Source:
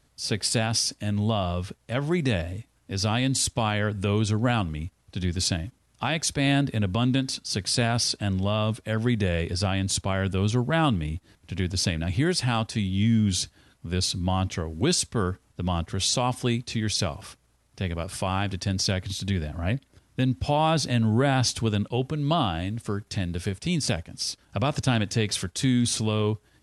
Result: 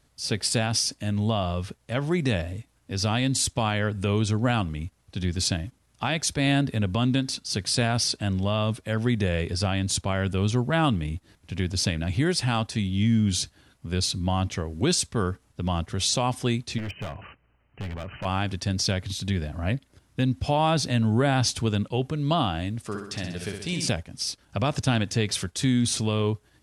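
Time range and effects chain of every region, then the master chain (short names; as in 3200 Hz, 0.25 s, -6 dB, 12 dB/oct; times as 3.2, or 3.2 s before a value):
16.78–18.25 brick-wall FIR low-pass 3100 Hz + high shelf 2200 Hz +5 dB + hard clip -29.5 dBFS
22.85–23.89 low shelf 280 Hz -8 dB + flutter echo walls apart 10.9 m, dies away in 0.72 s
whole clip: dry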